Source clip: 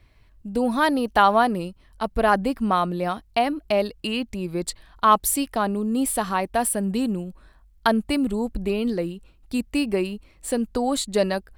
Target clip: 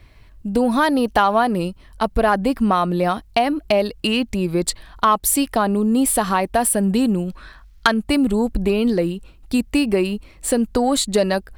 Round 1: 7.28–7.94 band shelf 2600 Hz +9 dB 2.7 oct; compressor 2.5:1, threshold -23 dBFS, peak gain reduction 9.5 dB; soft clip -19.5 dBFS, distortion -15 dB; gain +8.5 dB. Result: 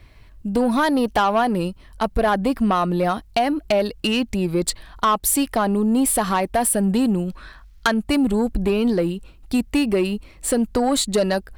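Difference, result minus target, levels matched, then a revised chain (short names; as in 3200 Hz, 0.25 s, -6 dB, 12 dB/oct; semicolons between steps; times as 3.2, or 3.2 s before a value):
soft clip: distortion +10 dB
7.28–7.94 band shelf 2600 Hz +9 dB 2.7 oct; compressor 2.5:1, threshold -23 dBFS, peak gain reduction 9.5 dB; soft clip -11.5 dBFS, distortion -25 dB; gain +8.5 dB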